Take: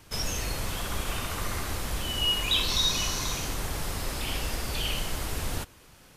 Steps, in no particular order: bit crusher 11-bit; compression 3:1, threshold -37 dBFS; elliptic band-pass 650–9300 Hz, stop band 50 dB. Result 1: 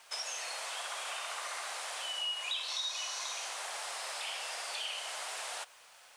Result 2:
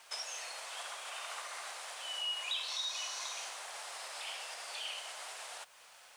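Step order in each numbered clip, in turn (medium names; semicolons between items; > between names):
elliptic band-pass > bit crusher > compression; compression > elliptic band-pass > bit crusher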